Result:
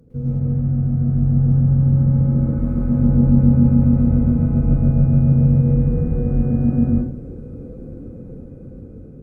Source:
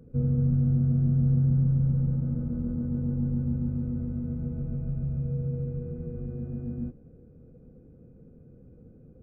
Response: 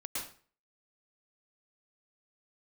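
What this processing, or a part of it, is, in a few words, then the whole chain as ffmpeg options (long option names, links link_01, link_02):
speakerphone in a meeting room: -filter_complex "[0:a]asplit=3[link_01][link_02][link_03];[link_01]afade=type=out:start_time=2.46:duration=0.02[link_04];[link_02]tiltshelf=frequency=970:gain=-4.5,afade=type=in:start_time=2.46:duration=0.02,afade=type=out:start_time=2.86:duration=0.02[link_05];[link_03]afade=type=in:start_time=2.86:duration=0.02[link_06];[link_04][link_05][link_06]amix=inputs=3:normalize=0[link_07];[1:a]atrim=start_sample=2205[link_08];[link_07][link_08]afir=irnorm=-1:irlink=0,dynaudnorm=framelen=920:gausssize=5:maxgain=12dB,volume=5.5dB" -ar 48000 -c:a libopus -b:a 32k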